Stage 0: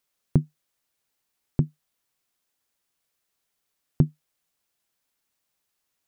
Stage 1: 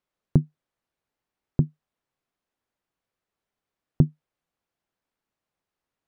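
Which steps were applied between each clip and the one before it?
low-pass 1.1 kHz 6 dB/octave; trim +1.5 dB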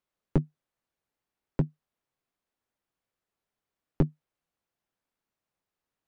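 one-sided wavefolder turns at -17 dBFS; trim -2.5 dB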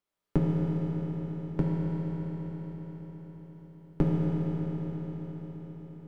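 reverberation RT60 5.8 s, pre-delay 5 ms, DRR -6 dB; trim -2.5 dB

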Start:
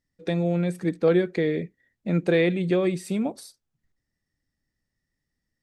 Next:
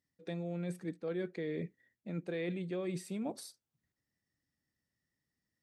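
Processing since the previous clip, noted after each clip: reverse; compression 6:1, threshold -31 dBFS, peak gain reduction 14.5 dB; reverse; high-pass 88 Hz; trim -4.5 dB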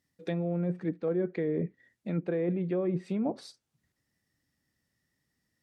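low-pass that closes with the level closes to 1 kHz, closed at -33.5 dBFS; trim +8 dB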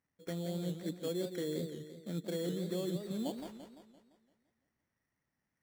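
sample-rate reducer 3.8 kHz, jitter 0%; modulated delay 171 ms, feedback 50%, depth 172 cents, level -8 dB; trim -7.5 dB

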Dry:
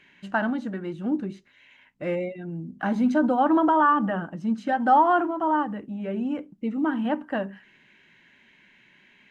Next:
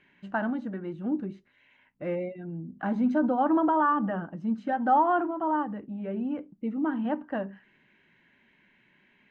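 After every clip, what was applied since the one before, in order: low-pass 1.6 kHz 6 dB/octave; trim -3 dB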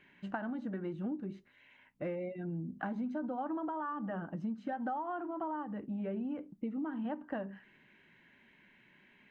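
compression 16:1, threshold -34 dBFS, peak gain reduction 17 dB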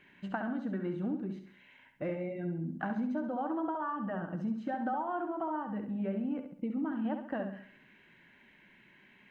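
flutter echo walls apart 11.6 m, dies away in 0.54 s; trim +2 dB

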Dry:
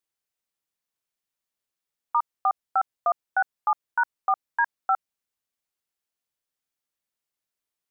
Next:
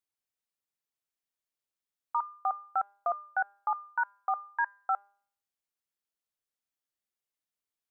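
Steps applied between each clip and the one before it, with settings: de-hum 200.4 Hz, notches 29; trim -6 dB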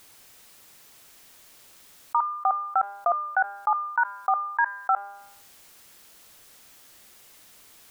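level flattener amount 50%; trim +6 dB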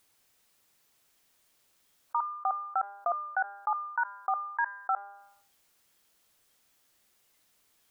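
spectral noise reduction 10 dB; trim -6.5 dB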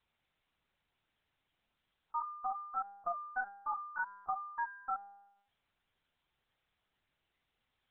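LPC vocoder at 8 kHz pitch kept; trim -7 dB

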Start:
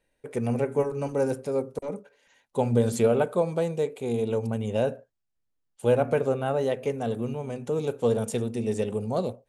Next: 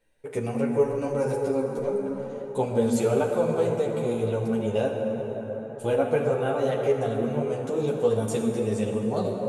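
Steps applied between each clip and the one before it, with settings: plate-style reverb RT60 4.6 s, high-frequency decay 0.45×, DRR 2 dB; in parallel at -2 dB: compression, threshold -29 dBFS, peak gain reduction 12.5 dB; on the sum: three-phase chorus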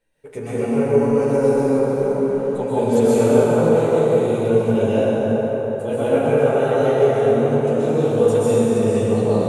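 plate-style reverb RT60 3.2 s, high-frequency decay 0.6×, pre-delay 115 ms, DRR -9.5 dB; trim -2.5 dB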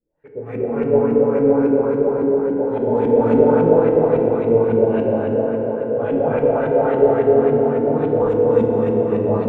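Chebyshev shaper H 2 -14 dB, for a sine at -1 dBFS; LFO low-pass saw up 3.6 Hz 240–2400 Hz; FDN reverb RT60 3 s, high-frequency decay 1×, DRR 1.5 dB; trim -5 dB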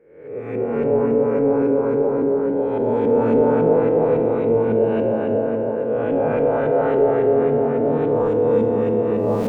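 reverse spectral sustain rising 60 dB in 0.73 s; hum notches 50/100 Hz; in parallel at -2 dB: peak limiter -10 dBFS, peak gain reduction 9.5 dB; on the sum: trim -7.5 dB

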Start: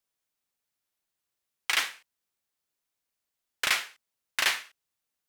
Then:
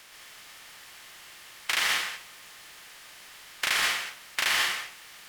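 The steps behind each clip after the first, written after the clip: spectral levelling over time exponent 0.4; reverberation RT60 0.40 s, pre-delay 115 ms, DRR -1 dB; trim -4.5 dB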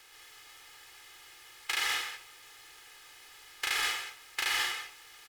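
comb 2.4 ms, depth 88%; trim -7.5 dB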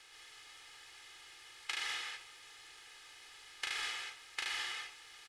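compression 6:1, threshold -34 dBFS, peak gain reduction 7.5 dB; FFT filter 1 kHz 0 dB, 3.6 kHz +3 dB, 10 kHz -1 dB, 15 kHz -19 dB; trim -3.5 dB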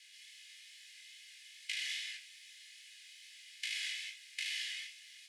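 steep high-pass 1.9 kHz 48 dB/octave; chorus 2.4 Hz, delay 18 ms, depth 4.4 ms; trim +4 dB

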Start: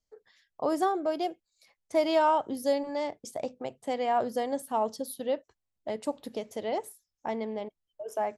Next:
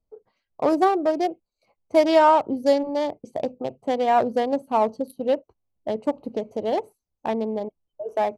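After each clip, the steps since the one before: local Wiener filter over 25 samples; trim +8.5 dB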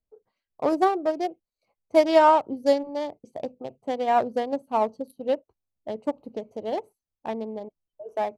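upward expansion 1.5:1, over -28 dBFS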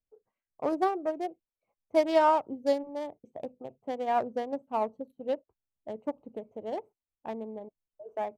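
local Wiener filter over 9 samples; trim -6 dB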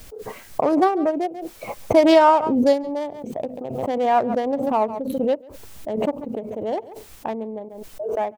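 echo from a far wall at 24 m, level -26 dB; swell ahead of each attack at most 36 dB/s; trim +8.5 dB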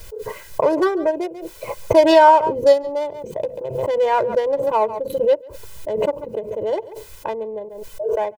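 comb 2 ms, depth 96%

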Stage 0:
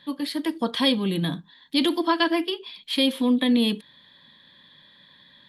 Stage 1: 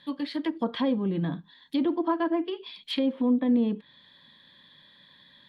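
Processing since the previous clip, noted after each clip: low-pass that closes with the level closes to 1 kHz, closed at -20 dBFS; trim -2.5 dB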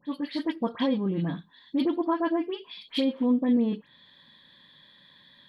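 phase dispersion highs, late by 71 ms, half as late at 2.2 kHz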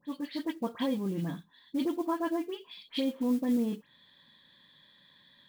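modulation noise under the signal 26 dB; trim -5 dB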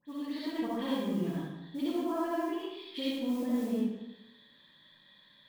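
algorithmic reverb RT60 1 s, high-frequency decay 0.8×, pre-delay 25 ms, DRR -7.5 dB; trim -7.5 dB

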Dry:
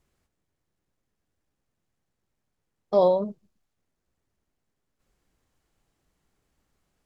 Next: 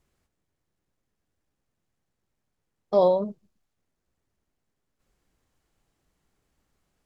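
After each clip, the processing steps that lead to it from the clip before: no audible change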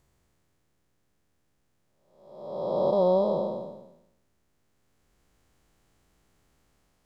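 spectral blur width 680 ms; trim +8 dB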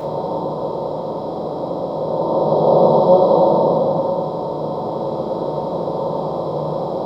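spectral levelling over time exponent 0.2; FDN reverb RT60 1.2 s, low-frequency decay 1.1×, high-frequency decay 0.4×, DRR -7.5 dB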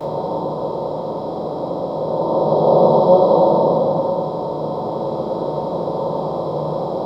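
gate with hold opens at -20 dBFS

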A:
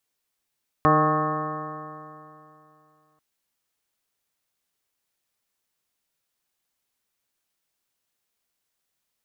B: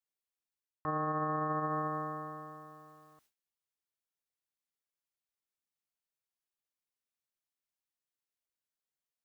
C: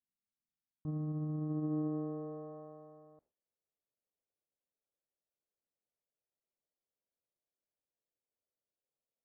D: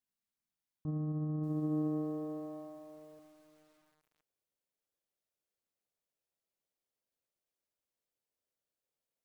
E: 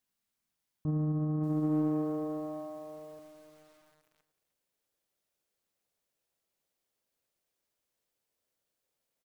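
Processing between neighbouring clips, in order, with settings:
gate with hold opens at -57 dBFS; reverse; compression, threshold -31 dBFS, peak gain reduction 15.5 dB; reverse; peak limiter -30.5 dBFS, peak gain reduction 8.5 dB; trim +4.5 dB
low-pass sweep 220 Hz -> 560 Hz, 1.31–2.59 s
bit-crushed delay 583 ms, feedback 35%, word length 10-bit, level -12 dB; trim +1.5 dB
in parallel at -8.5 dB: saturation -38.5 dBFS, distortion -9 dB; on the sum: delay 306 ms -16 dB; trim +4 dB

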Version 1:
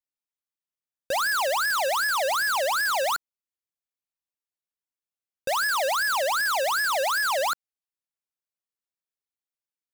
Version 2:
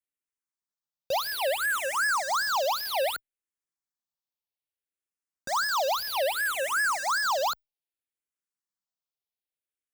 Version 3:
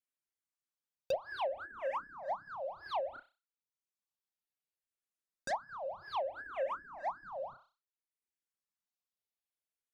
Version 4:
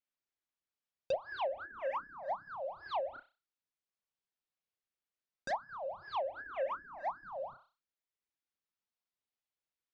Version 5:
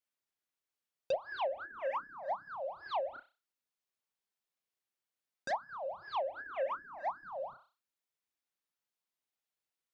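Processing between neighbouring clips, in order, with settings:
barber-pole phaser -0.62 Hz
flutter echo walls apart 5.4 m, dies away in 0.3 s; reverb removal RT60 0.66 s; low-pass that closes with the level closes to 350 Hz, closed at -22.5 dBFS; trim -3.5 dB
low-pass 4.9 kHz 12 dB/octave
bass shelf 120 Hz -8.5 dB; trim +1 dB

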